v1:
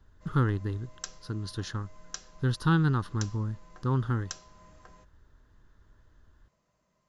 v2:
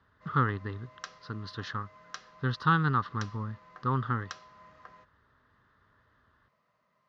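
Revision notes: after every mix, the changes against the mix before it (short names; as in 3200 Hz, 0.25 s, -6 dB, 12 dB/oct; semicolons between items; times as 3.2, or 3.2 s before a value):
master: add speaker cabinet 130–4600 Hz, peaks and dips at 180 Hz -4 dB, 330 Hz -8 dB, 1200 Hz +9 dB, 1900 Hz +6 dB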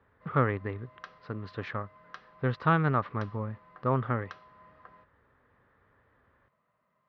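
speech: remove fixed phaser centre 2300 Hz, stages 6; master: add air absorption 320 m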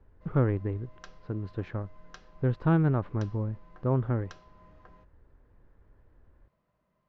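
speech: add tape spacing loss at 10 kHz 27 dB; master: remove speaker cabinet 130–4600 Hz, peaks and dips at 180 Hz -4 dB, 330 Hz -8 dB, 1200 Hz +9 dB, 1900 Hz +6 dB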